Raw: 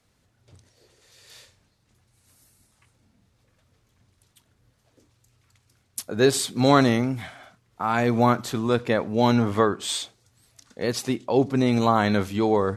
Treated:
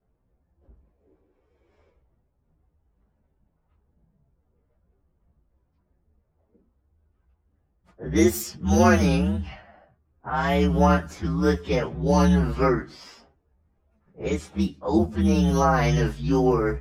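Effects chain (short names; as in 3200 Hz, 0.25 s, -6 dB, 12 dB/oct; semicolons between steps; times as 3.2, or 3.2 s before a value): inharmonic rescaling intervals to 125%; varispeed -24%; low-pass opened by the level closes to 870 Hz, open at -20.5 dBFS; gain +2 dB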